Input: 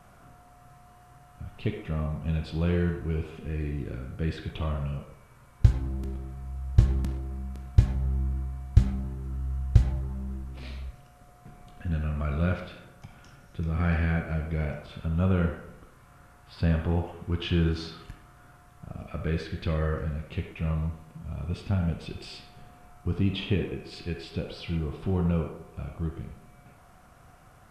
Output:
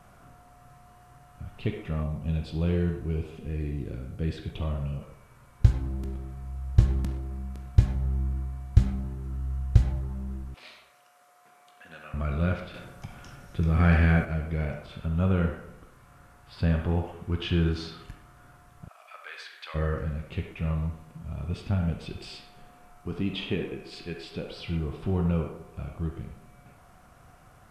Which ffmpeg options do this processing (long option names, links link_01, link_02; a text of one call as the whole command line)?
ffmpeg -i in.wav -filter_complex "[0:a]asettb=1/sr,asplit=3[link_01][link_02][link_03];[link_01]atrim=end=2.034[link_04];[link_02]atrim=start=2.03:end=5.02,asetpts=PTS-STARTPTS,afade=type=in:duration=0.004:curve=qsin,afade=type=out:start_time=2.986:duration=0.004:curve=qsin,equalizer=frequency=1500:width_type=o:width=1.5:gain=-6[link_05];[link_03]atrim=start=5.016[link_06];[link_04][link_05]acrossfade=duration=0.004:curve1=hsin:curve2=qsin[link_07];[link_07][link_06]acrossfade=duration=0.004:curve1=qsin:curve2=hsin,asettb=1/sr,asplit=3[link_08][link_09][link_10];[link_08]atrim=end=10.544[link_11];[link_09]atrim=start=10.54:end=12.14,asetpts=PTS-STARTPTS,afade=type=in:duration=0.004:curve=qsin,afade=type=out:start_time=1.596:duration=0.004:curve=qsin,highpass=670[link_12];[link_10]atrim=start=12.136[link_13];[link_11][link_12]acrossfade=duration=0.004:curve1=hsin:curve2=qsin[link_14];[link_14][link_13]acrossfade=duration=0.004:curve1=qsin:curve2=hsin,asettb=1/sr,asplit=3[link_15][link_16][link_17];[link_15]atrim=end=12.744[link_18];[link_16]atrim=start=12.74:end=14.25,asetpts=PTS-STARTPTS,afade=type=in:duration=0.004:curve=qsin,afade=type=out:start_time=1.506:duration=0.004:curve=qsin,acontrast=33[link_19];[link_17]atrim=start=14.246[link_20];[link_18][link_19]acrossfade=duration=0.004:curve1=hsin:curve2=qsin[link_21];[link_21][link_20]acrossfade=duration=0.004:curve1=qsin:curve2=hsin,asplit=3[link_22][link_23][link_24];[link_22]afade=type=out:start_time=18.87:duration=0.02[link_25];[link_23]highpass=frequency=830:width=0.5412,highpass=frequency=830:width=1.3066,afade=type=in:start_time=18.87:duration=0.02,afade=type=out:start_time=19.74:duration=0.02[link_26];[link_24]afade=type=in:start_time=19.74:duration=0.02[link_27];[link_25][link_26][link_27]amix=inputs=3:normalize=0,asettb=1/sr,asplit=3[link_28][link_29][link_30];[link_28]atrim=end=22.364[link_31];[link_29]atrim=start=22.36:end=24.57,asetpts=PTS-STARTPTS,afade=type=in:duration=0.004:curve=qsin,afade=type=out:start_time=2.206:duration=0.004:curve=qsin,equalizer=frequency=83:width=1:gain=-10.5[link_32];[link_30]atrim=start=24.566[link_33];[link_31][link_32]acrossfade=duration=0.004:curve1=hsin:curve2=qsin[link_34];[link_34][link_33]acrossfade=duration=0.004:curve1=qsin:curve2=hsin" out.wav